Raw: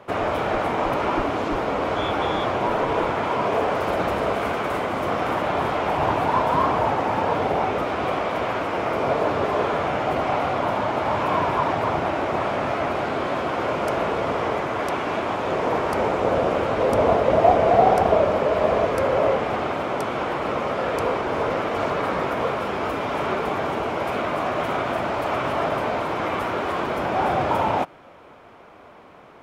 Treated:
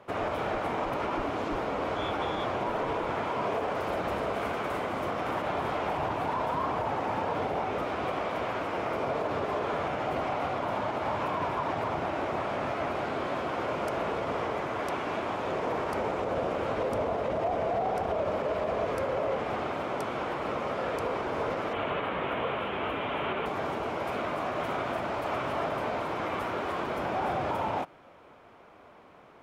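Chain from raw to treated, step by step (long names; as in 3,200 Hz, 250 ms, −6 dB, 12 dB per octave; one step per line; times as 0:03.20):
0:21.73–0:23.46: high shelf with overshoot 4,000 Hz −9 dB, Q 3
brickwall limiter −14.5 dBFS, peak gain reduction 10.5 dB
level −7 dB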